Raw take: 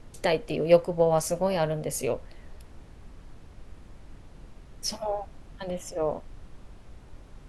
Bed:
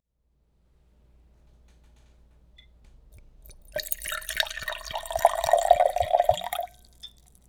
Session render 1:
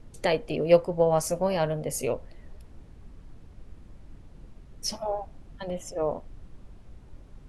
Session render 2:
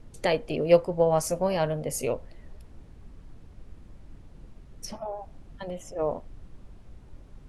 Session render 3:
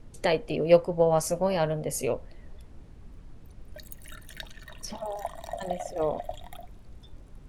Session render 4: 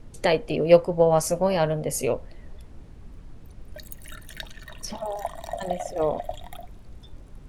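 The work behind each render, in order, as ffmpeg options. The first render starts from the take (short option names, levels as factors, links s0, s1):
-af "afftdn=nr=6:nf=-50"
-filter_complex "[0:a]asettb=1/sr,asplit=3[s0][s1][s2];[s0]atrim=end=4.854[s3];[s1]atrim=start=4.85:end=5.99,asetpts=PTS-STARTPTS,afade=t=in:d=0.004:c=qsin,afade=t=out:st=1.136:d=0.004:c=qsin,acrossover=split=2700|5500[s4][s5][s6];[s4]acompressor=threshold=0.0251:ratio=4[s7];[s5]acompressor=threshold=0.00158:ratio=4[s8];[s6]acompressor=threshold=0.00316:ratio=4[s9];[s7][s8][s9]amix=inputs=3:normalize=0[s10];[s2]atrim=start=5.986[s11];[s3][s10]acrossfade=d=0.004:c1=hsin:c2=qsin[s12];[s12][s11]acrossfade=d=0.004:c1=qsin:c2=hsin"
-filter_complex "[1:a]volume=0.158[s0];[0:a][s0]amix=inputs=2:normalize=0"
-af "volume=1.5"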